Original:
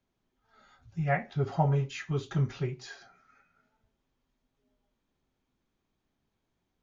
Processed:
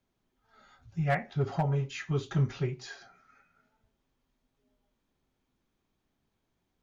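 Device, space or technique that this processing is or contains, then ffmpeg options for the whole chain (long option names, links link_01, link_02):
limiter into clipper: -af "alimiter=limit=-17dB:level=0:latency=1:release=460,asoftclip=type=hard:threshold=-21dB,volume=1dB"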